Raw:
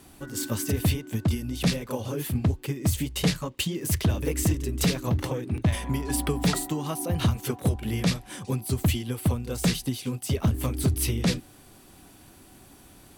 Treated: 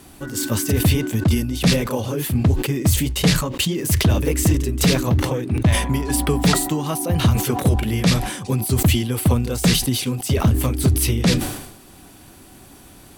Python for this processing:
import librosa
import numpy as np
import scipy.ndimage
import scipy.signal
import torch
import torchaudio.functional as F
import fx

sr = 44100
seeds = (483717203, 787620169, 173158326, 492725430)

y = fx.sustainer(x, sr, db_per_s=65.0)
y = y * 10.0 ** (6.5 / 20.0)